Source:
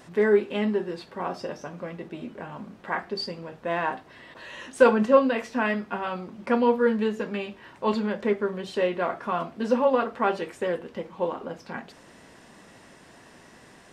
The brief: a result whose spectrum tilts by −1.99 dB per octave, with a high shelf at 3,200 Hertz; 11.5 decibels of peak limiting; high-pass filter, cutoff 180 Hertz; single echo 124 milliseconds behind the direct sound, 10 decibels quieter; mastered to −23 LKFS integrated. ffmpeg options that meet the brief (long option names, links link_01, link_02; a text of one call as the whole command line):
ffmpeg -i in.wav -af "highpass=180,highshelf=frequency=3200:gain=-8,alimiter=limit=-16dB:level=0:latency=1,aecho=1:1:124:0.316,volume=6dB" out.wav